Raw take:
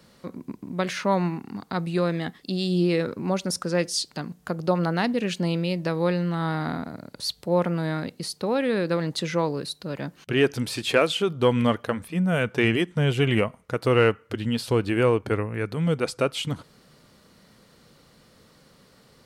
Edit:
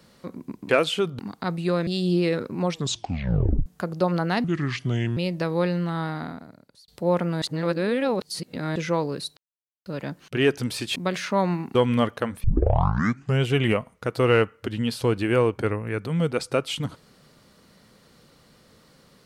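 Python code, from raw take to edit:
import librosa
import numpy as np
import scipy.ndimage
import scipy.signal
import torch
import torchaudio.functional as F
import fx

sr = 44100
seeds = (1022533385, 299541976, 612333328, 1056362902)

y = fx.edit(x, sr, fx.swap(start_s=0.69, length_s=0.79, other_s=10.92, other_length_s=0.5),
    fx.cut(start_s=2.16, length_s=0.38),
    fx.tape_stop(start_s=3.27, length_s=1.06),
    fx.speed_span(start_s=5.11, length_s=0.51, speed=0.7),
    fx.fade_out_span(start_s=6.27, length_s=1.06),
    fx.reverse_span(start_s=7.87, length_s=1.34),
    fx.insert_silence(at_s=9.82, length_s=0.49),
    fx.tape_start(start_s=12.11, length_s=0.99), tone=tone)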